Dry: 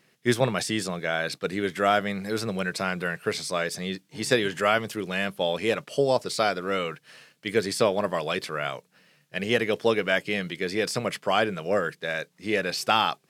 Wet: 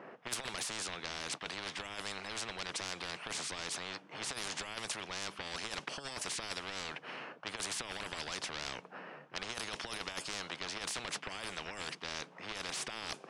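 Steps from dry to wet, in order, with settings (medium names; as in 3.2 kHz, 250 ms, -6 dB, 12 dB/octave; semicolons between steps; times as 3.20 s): high-pass 450 Hz 12 dB/octave; level-controlled noise filter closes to 1.6 kHz, open at -19.5 dBFS; resampled via 22.05 kHz; in parallel at -3 dB: peak limiter -20 dBFS, peak gain reduction 11.5 dB; on the sum: compressor with a negative ratio -25 dBFS, ratio -0.5; graphic EQ 2/4/8 kHz -9/-12/-10 dB; saturation -21.5 dBFS, distortion -16 dB; spectrum-flattening compressor 10:1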